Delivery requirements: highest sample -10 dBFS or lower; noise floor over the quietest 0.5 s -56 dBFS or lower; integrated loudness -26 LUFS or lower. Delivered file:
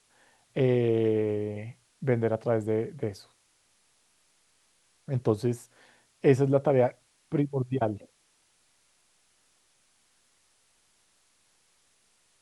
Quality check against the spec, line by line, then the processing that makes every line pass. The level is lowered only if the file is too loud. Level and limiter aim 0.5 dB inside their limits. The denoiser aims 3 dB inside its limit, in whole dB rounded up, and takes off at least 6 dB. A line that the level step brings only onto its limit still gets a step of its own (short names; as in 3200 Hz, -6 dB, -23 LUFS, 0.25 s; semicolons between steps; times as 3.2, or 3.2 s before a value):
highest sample -9.0 dBFS: fail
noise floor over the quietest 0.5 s -68 dBFS: OK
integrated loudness -28.0 LUFS: OK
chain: limiter -10.5 dBFS